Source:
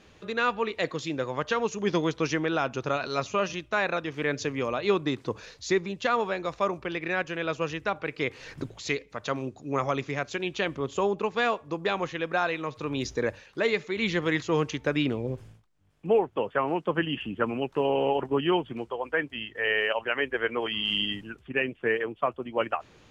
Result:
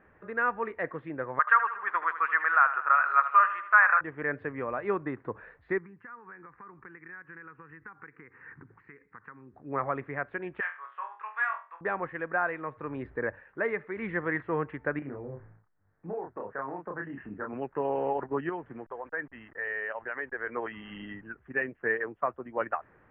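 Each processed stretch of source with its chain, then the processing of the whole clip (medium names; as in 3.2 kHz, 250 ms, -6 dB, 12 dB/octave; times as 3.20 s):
1.39–4.01 s: resonant high-pass 1.2 kHz, resonance Q 3.6 + dynamic bell 2.4 kHz, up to +4 dB, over -32 dBFS, Q 0.73 + feedback delay 78 ms, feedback 54%, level -12 dB
5.78–9.54 s: compression 12:1, threshold -36 dBFS + high-pass 110 Hz + static phaser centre 1.5 kHz, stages 4
10.60–11.81 s: high-pass 1.1 kHz 24 dB/octave + flutter echo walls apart 4 m, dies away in 0.32 s
14.99–17.53 s: low-pass 2.1 kHz 24 dB/octave + compression 3:1, threshold -32 dBFS + doubling 29 ms -3 dB
18.49–20.47 s: send-on-delta sampling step -47.5 dBFS + compression 2:1, threshold -32 dBFS
whole clip: elliptic low-pass 1.8 kHz, stop band 70 dB; tilt shelf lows -6 dB, about 1.3 kHz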